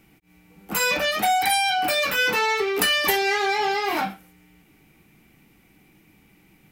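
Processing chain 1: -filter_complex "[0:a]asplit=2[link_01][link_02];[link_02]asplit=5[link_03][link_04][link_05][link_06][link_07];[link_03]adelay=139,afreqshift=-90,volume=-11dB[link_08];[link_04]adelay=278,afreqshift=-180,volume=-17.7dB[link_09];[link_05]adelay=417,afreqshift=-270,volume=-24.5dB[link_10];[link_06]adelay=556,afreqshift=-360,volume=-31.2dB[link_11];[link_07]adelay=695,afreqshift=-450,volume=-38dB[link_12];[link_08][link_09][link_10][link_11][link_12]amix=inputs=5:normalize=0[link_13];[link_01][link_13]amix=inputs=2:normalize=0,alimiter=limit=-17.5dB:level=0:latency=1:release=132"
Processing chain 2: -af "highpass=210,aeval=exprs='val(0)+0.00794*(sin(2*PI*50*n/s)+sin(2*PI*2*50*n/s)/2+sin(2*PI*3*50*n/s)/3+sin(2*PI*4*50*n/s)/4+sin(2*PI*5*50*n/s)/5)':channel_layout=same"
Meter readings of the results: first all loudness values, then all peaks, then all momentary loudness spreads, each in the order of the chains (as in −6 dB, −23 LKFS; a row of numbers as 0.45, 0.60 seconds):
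−25.5, −21.5 LKFS; −17.5, −7.0 dBFS; 6, 5 LU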